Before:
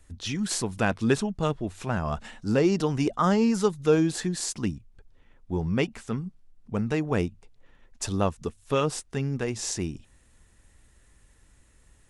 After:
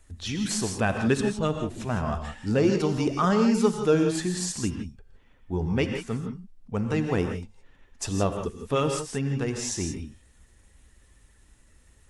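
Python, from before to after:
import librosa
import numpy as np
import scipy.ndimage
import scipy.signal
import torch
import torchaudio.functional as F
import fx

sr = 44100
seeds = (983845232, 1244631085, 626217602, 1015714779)

y = fx.spec_quant(x, sr, step_db=15)
y = fx.rev_gated(y, sr, seeds[0], gate_ms=190, shape='rising', drr_db=5.0)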